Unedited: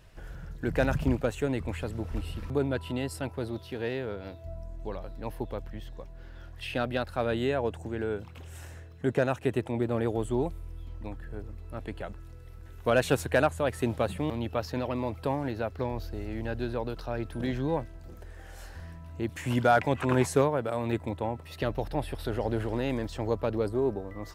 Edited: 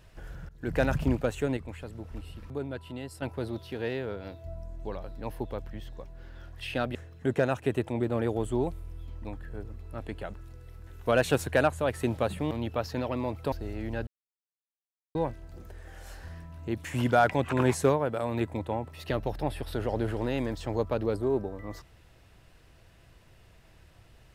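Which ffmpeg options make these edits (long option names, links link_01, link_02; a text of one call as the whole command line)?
ffmpeg -i in.wav -filter_complex "[0:a]asplit=8[link_01][link_02][link_03][link_04][link_05][link_06][link_07][link_08];[link_01]atrim=end=0.49,asetpts=PTS-STARTPTS,afade=type=out:start_time=0.486:duration=0.004:curve=hsin:silence=0.105925[link_09];[link_02]atrim=start=0.49:end=1.572,asetpts=PTS-STARTPTS,afade=type=in:duration=0.26:silence=0.105925[link_10];[link_03]atrim=start=1.568:end=3.222,asetpts=PTS-STARTPTS,volume=-7dB[link_11];[link_04]atrim=start=3.218:end=6.952[link_12];[link_05]atrim=start=8.738:end=15.312[link_13];[link_06]atrim=start=16.038:end=16.59,asetpts=PTS-STARTPTS,afade=type=out:start_time=0.548:duration=0.004:curve=hsin[link_14];[link_07]atrim=start=16.59:end=17.67,asetpts=PTS-STARTPTS,volume=0[link_15];[link_08]atrim=start=17.67,asetpts=PTS-STARTPTS,afade=type=in:duration=0.004:curve=hsin[link_16];[link_09][link_10]concat=n=2:v=0:a=1[link_17];[link_17][link_11]acrossfade=duration=0.004:curve1=hsin:curve2=hsin[link_18];[link_18][link_12]acrossfade=duration=0.004:curve1=hsin:curve2=hsin[link_19];[link_19][link_13]acrossfade=duration=0.004:curve1=hsin:curve2=hsin[link_20];[link_14][link_15][link_16]concat=n=3:v=0:a=1[link_21];[link_20][link_21]acrossfade=duration=0.004:curve1=hsin:curve2=hsin" out.wav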